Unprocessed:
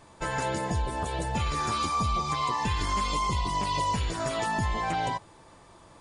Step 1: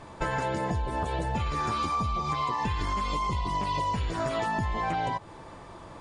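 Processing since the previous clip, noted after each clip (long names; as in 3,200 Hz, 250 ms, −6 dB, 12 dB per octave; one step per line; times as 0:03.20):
low-pass filter 2,600 Hz 6 dB per octave
downward compressor 6 to 1, threshold −35 dBFS, peak gain reduction 10.5 dB
level +8.5 dB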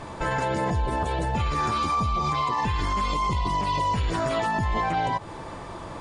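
brickwall limiter −25.5 dBFS, peak gain reduction 9 dB
level +8 dB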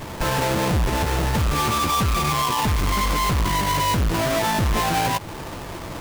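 each half-wave held at its own peak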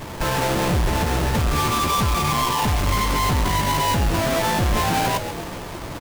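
echo with shifted repeats 135 ms, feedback 61%, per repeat −150 Hz, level −10 dB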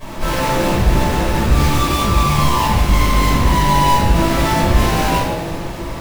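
convolution reverb RT60 0.90 s, pre-delay 5 ms, DRR −10.5 dB
level −9.5 dB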